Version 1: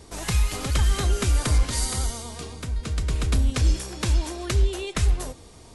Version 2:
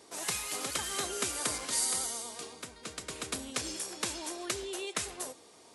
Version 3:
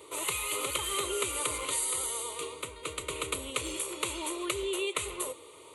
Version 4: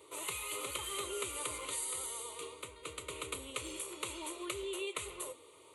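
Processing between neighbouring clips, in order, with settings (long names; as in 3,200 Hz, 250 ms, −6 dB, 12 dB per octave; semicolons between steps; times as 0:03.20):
high-pass filter 330 Hz 12 dB per octave; dynamic equaliser 9,800 Hz, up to +6 dB, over −46 dBFS, Q 0.7; level −5.5 dB
downward compressor 2.5 to 1, threshold −35 dBFS, peak gain reduction 6 dB; phaser with its sweep stopped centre 1,100 Hz, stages 8; level +9 dB
flanger 1.9 Hz, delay 9.4 ms, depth 1.2 ms, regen −76%; level −3 dB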